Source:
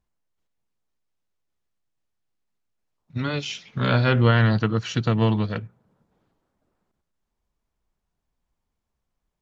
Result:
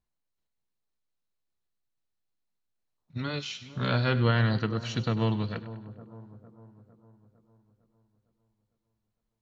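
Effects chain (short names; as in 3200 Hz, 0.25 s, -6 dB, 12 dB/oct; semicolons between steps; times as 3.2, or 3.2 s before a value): bell 4100 Hz +7 dB 0.21 oct; split-band echo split 1100 Hz, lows 0.455 s, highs 0.1 s, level -15 dB; gain -6.5 dB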